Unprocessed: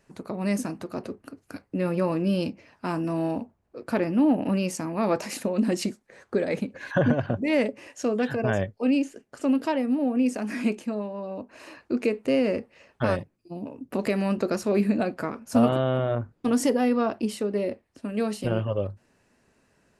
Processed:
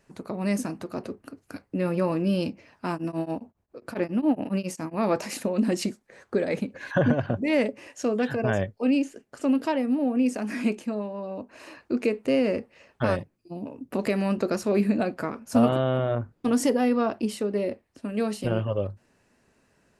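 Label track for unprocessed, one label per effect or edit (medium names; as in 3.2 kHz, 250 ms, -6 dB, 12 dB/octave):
2.920000	4.940000	tremolo of two beating tones nulls at 7.3 Hz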